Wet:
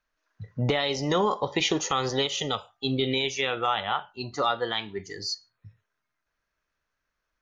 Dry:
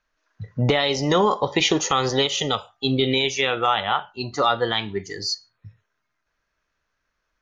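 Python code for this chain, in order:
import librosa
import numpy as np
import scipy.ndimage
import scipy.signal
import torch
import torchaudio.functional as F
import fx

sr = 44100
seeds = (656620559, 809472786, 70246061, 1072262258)

y = fx.low_shelf(x, sr, hz=140.0, db=-10.0, at=(4.51, 4.99))
y = y * 10.0 ** (-5.5 / 20.0)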